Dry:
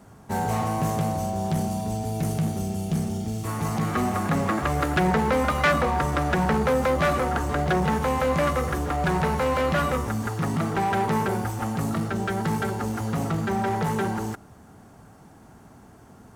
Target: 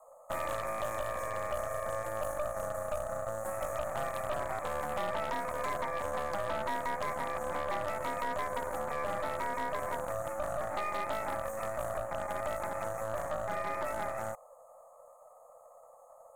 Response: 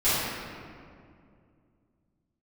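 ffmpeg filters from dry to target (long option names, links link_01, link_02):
-af "afftfilt=real='re*(1-between(b*sr/4096,890,6000))':imag='im*(1-between(b*sr/4096,890,6000))':win_size=4096:overlap=0.75,acompressor=threshold=-28dB:ratio=3,afreqshift=440,aeval=exprs='0.126*(cos(1*acos(clip(val(0)/0.126,-1,1)))-cos(1*PI/2))+0.0398*(cos(6*acos(clip(val(0)/0.126,-1,1)))-cos(6*PI/2))+0.0178*(cos(8*acos(clip(val(0)/0.126,-1,1)))-cos(8*PI/2))':channel_layout=same,volume=-6.5dB"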